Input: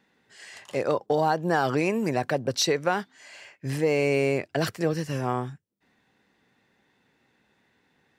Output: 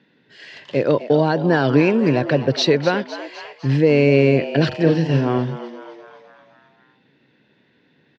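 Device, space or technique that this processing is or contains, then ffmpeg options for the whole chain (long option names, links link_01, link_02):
frequency-shifting delay pedal into a guitar cabinet: -filter_complex "[0:a]asplit=7[link_01][link_02][link_03][link_04][link_05][link_06][link_07];[link_02]adelay=254,afreqshift=110,volume=-13dB[link_08];[link_03]adelay=508,afreqshift=220,volume=-17.6dB[link_09];[link_04]adelay=762,afreqshift=330,volume=-22.2dB[link_10];[link_05]adelay=1016,afreqshift=440,volume=-26.7dB[link_11];[link_06]adelay=1270,afreqshift=550,volume=-31.3dB[link_12];[link_07]adelay=1524,afreqshift=660,volume=-35.9dB[link_13];[link_01][link_08][link_09][link_10][link_11][link_12][link_13]amix=inputs=7:normalize=0,highpass=110,equalizer=frequency=140:width_type=q:width=4:gain=6,equalizer=frequency=290:width_type=q:width=4:gain=4,equalizer=frequency=790:width_type=q:width=4:gain=-9,equalizer=frequency=1200:width_type=q:width=4:gain=-9,equalizer=frequency=2100:width_type=q:width=4:gain=-4,lowpass=frequency=4300:width=0.5412,lowpass=frequency=4300:width=1.3066,asettb=1/sr,asplit=3[link_14][link_15][link_16];[link_14]atrim=end=4.674[link_17];[link_15]atrim=start=4.67:end=5.38,asetpts=PTS-STARTPTS,afade=type=in:duration=0.004:curve=qsin,afade=type=out:start_time=0.706:duration=0.004:curve=qsin,asplit=2[link_18][link_19];[link_19]adelay=43,volume=-8dB[link_20];[link_18][link_20]amix=inputs=2:normalize=0,atrim=end_sample=31311[link_21];[link_16]atrim=start=5.376[link_22];[link_17][link_21]acrossfade=duration=0.004:curve1=hsin:curve2=qsin[link_23];[link_23][link_22]acrossfade=duration=0.004:curve1=qsin:curve2=hsin,volume=8.5dB"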